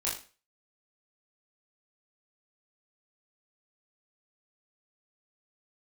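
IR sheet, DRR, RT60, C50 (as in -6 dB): -6.0 dB, 0.35 s, 6.5 dB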